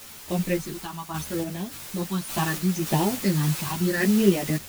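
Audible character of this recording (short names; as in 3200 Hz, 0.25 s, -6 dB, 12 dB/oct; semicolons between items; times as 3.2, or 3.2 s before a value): phasing stages 6, 0.76 Hz, lowest notch 480–1400 Hz; a quantiser's noise floor 6-bit, dither triangular; random-step tremolo, depth 75%; a shimmering, thickened sound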